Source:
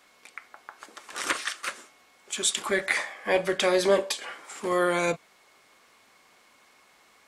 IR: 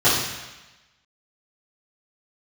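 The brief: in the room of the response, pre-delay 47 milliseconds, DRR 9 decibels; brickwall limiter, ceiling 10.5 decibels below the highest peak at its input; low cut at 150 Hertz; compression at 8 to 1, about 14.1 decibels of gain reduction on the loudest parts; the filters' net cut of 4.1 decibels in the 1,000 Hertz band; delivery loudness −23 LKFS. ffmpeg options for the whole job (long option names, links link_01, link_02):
-filter_complex "[0:a]highpass=150,equalizer=frequency=1000:width_type=o:gain=-5.5,acompressor=threshold=-34dB:ratio=8,alimiter=level_in=7.5dB:limit=-24dB:level=0:latency=1,volume=-7.5dB,asplit=2[link_01][link_02];[1:a]atrim=start_sample=2205,adelay=47[link_03];[link_02][link_03]afir=irnorm=-1:irlink=0,volume=-30dB[link_04];[link_01][link_04]amix=inputs=2:normalize=0,volume=19.5dB"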